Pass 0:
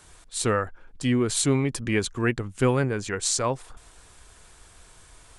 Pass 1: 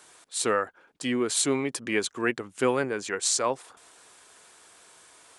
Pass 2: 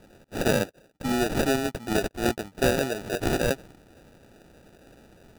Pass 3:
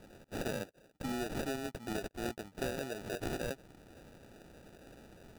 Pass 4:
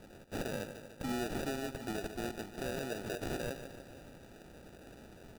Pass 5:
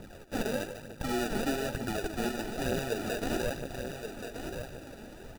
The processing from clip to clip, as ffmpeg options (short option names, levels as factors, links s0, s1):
-af "highpass=300"
-af "acrusher=samples=41:mix=1:aa=0.000001,volume=1.19"
-af "acompressor=threshold=0.0141:ratio=2.5,volume=0.75"
-filter_complex "[0:a]asplit=2[s0][s1];[s1]aecho=0:1:147|294|441|588|735|882:0.237|0.138|0.0798|0.0463|0.0268|0.0156[s2];[s0][s2]amix=inputs=2:normalize=0,alimiter=level_in=2.11:limit=0.0631:level=0:latency=1:release=46,volume=0.473,volume=1.19"
-filter_complex "[0:a]aphaser=in_gain=1:out_gain=1:delay=4.9:decay=0.5:speed=1.1:type=triangular,asplit=2[s0][s1];[s1]aecho=0:1:1127:0.422[s2];[s0][s2]amix=inputs=2:normalize=0,volume=1.68"